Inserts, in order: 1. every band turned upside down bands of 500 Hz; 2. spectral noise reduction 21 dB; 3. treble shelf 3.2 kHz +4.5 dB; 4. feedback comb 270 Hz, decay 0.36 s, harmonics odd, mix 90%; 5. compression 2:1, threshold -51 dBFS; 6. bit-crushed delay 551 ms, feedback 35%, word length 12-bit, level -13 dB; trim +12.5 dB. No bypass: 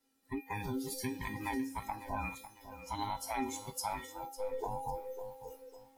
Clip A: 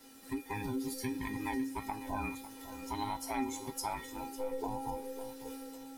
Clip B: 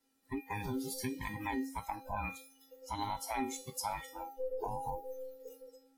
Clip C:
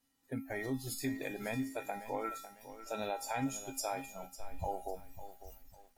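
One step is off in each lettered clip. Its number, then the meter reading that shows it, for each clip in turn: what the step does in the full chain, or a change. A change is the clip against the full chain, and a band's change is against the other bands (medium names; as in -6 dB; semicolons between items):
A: 2, 250 Hz band +3.5 dB; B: 6, momentary loudness spread change +1 LU; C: 1, 1 kHz band -3.0 dB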